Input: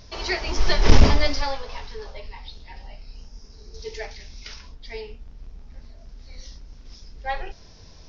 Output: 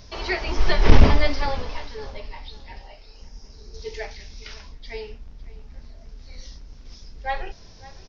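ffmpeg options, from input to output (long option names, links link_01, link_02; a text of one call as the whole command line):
ffmpeg -i in.wav -filter_complex "[0:a]asettb=1/sr,asplit=3[link_01][link_02][link_03];[link_01]atrim=end=2.814[link_04];[link_02]atrim=start=2.81:end=3.22,asetpts=PTS-STARTPTS,afade=type=in:duration=0.004:curve=qsin,afade=type=out:start_time=0.406:duration=0.004:curve=qsin,lowshelf=frequency=290:width_type=q:width=1.5:gain=-7.5[link_05];[link_03]atrim=start=3.216[link_06];[link_04][link_05]acrossfade=duration=0.004:curve1=hsin:curve2=qsin[link_07];[link_07][link_06]acrossfade=duration=0.004:curve1=qsin:curve2=hsin,asplit=2[link_08][link_09];[link_09]adelay=557,lowpass=frequency=4000:poles=1,volume=-19dB,asplit=2[link_10][link_11];[link_11]adelay=557,lowpass=frequency=4000:poles=1,volume=0.3,asplit=2[link_12][link_13];[link_13]adelay=557,lowpass=frequency=4000:poles=1,volume=0.3[link_14];[link_08][link_10][link_12][link_14]amix=inputs=4:normalize=0,acrossover=split=4000[link_15][link_16];[link_16]acompressor=threshold=-46dB:ratio=4:attack=1:release=60[link_17];[link_15][link_17]amix=inputs=2:normalize=0,volume=1dB" out.wav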